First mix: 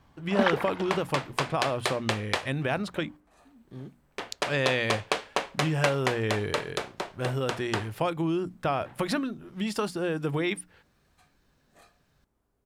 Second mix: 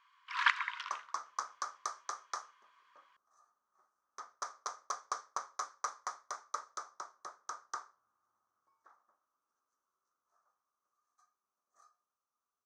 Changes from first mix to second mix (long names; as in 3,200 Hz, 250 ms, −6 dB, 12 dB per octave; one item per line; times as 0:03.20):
speech: muted
first sound: add linear-phase brick-wall high-pass 940 Hz
second sound: add pair of resonant band-passes 2,700 Hz, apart 2.3 octaves